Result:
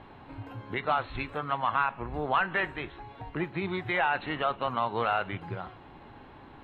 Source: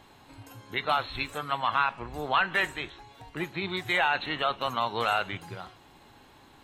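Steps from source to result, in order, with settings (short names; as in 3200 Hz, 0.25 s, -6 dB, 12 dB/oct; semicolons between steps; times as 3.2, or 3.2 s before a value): in parallel at +2.5 dB: compressor, threshold -40 dBFS, peak gain reduction 18.5 dB; on the sum: air absorption 480 m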